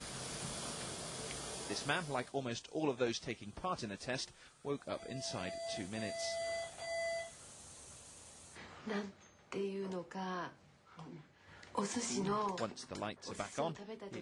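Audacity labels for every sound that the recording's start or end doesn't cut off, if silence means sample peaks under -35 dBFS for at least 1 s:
8.880000	10.460000	sound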